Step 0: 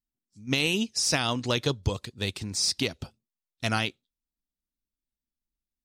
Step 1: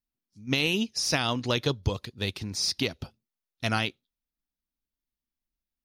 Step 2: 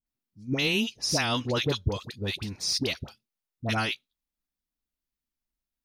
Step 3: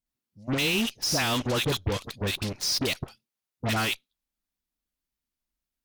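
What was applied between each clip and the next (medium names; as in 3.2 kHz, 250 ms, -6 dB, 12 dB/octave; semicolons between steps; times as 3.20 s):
peaking EQ 7.9 kHz -14 dB 0.32 oct
phase dispersion highs, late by 65 ms, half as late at 970 Hz
saturation -26 dBFS, distortion -11 dB; Chebyshev shaper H 3 -21 dB, 6 -24 dB, 7 -14 dB, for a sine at -26 dBFS; trim +5 dB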